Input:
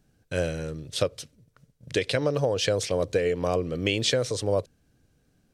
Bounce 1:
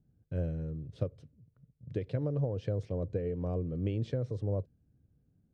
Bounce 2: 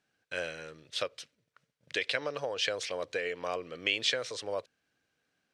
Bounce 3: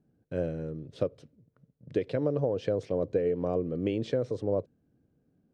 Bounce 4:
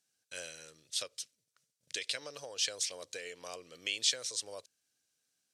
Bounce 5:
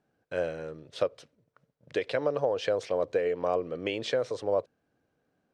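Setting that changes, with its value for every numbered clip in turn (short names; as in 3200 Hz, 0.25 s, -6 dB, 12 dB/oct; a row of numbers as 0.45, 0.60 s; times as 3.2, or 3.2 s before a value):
band-pass, frequency: 100, 2100, 260, 7300, 810 Hz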